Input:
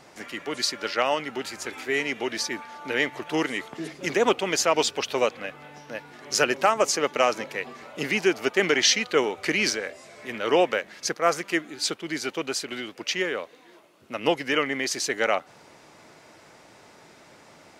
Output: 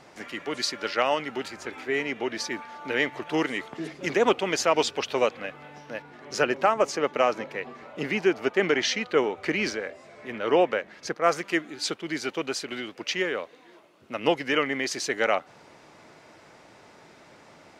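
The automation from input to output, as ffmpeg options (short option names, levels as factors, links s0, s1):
-af "asetnsamples=n=441:p=0,asendcmd='1.48 lowpass f 2200;2.4 lowpass f 4200;6.02 lowpass f 1900;11.24 lowpass f 4800',lowpass=f=5200:p=1"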